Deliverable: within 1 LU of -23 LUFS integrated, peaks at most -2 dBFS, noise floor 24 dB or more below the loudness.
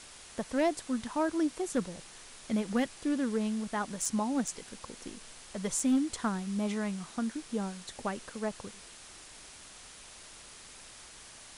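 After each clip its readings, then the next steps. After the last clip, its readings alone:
clipped samples 0.3%; clipping level -21.5 dBFS; noise floor -51 dBFS; noise floor target -57 dBFS; loudness -33.0 LUFS; peak level -21.5 dBFS; loudness target -23.0 LUFS
-> clip repair -21.5 dBFS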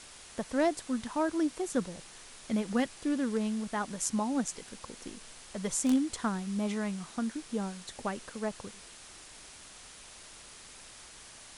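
clipped samples 0.0%; noise floor -51 dBFS; noise floor target -57 dBFS
-> noise reduction 6 dB, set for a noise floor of -51 dBFS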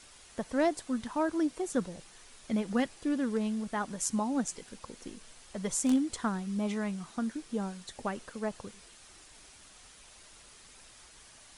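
noise floor -56 dBFS; noise floor target -57 dBFS
-> noise reduction 6 dB, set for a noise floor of -56 dBFS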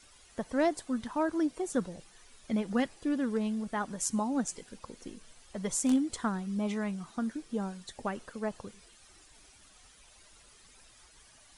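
noise floor -59 dBFS; loudness -33.0 LUFS; peak level -14.0 dBFS; loudness target -23.0 LUFS
-> trim +10 dB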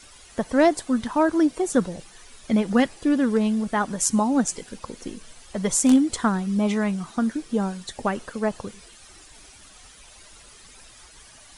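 loudness -23.0 LUFS; peak level -4.0 dBFS; noise floor -49 dBFS

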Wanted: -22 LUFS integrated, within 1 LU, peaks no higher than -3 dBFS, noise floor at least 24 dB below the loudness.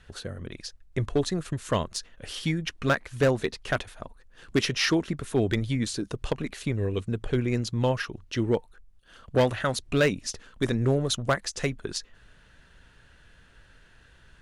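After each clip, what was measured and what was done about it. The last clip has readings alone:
clipped samples 0.5%; clipping level -15.5 dBFS; loudness -28.0 LUFS; peak level -15.5 dBFS; loudness target -22.0 LUFS
-> clip repair -15.5 dBFS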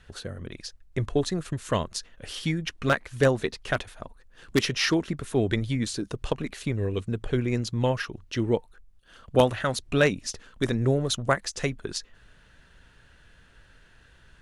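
clipped samples 0.0%; loudness -27.5 LUFS; peak level -6.5 dBFS; loudness target -22.0 LUFS
-> trim +5.5 dB; peak limiter -3 dBFS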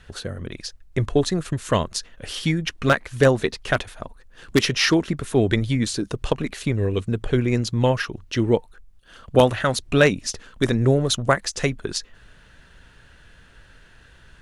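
loudness -22.5 LUFS; peak level -3.0 dBFS; noise floor -52 dBFS

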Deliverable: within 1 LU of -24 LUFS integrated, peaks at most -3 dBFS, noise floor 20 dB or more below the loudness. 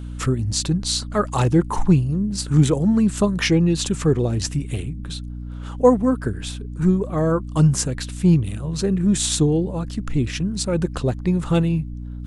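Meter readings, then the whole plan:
hum 60 Hz; highest harmonic 300 Hz; hum level -29 dBFS; loudness -20.5 LUFS; peak level -3.5 dBFS; loudness target -24.0 LUFS
-> de-hum 60 Hz, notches 5; trim -3.5 dB

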